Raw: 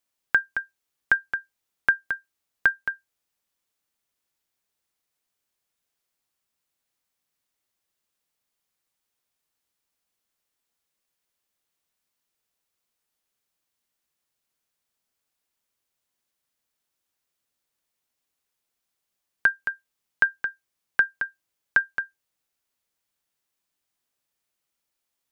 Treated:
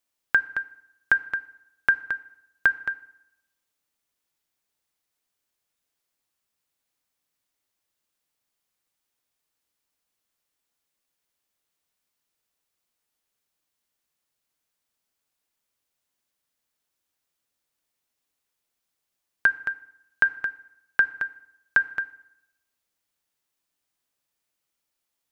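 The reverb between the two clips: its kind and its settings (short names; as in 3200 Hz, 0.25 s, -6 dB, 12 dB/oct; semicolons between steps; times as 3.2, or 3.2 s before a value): FDN reverb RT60 0.83 s, low-frequency decay 1×, high-frequency decay 0.75×, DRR 14 dB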